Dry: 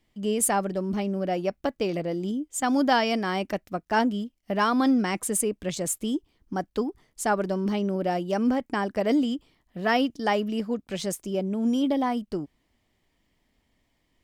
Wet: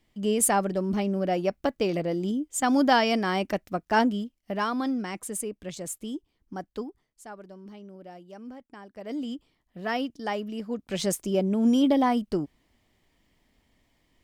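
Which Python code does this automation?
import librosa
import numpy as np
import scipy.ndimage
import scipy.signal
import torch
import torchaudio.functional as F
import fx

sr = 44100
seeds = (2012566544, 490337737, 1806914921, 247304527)

y = fx.gain(x, sr, db=fx.line((4.02, 1.0), (4.91, -7.0), (6.81, -7.0), (7.24, -18.5), (8.9, -18.5), (9.3, -6.0), (10.6, -6.0), (11.03, 3.0)))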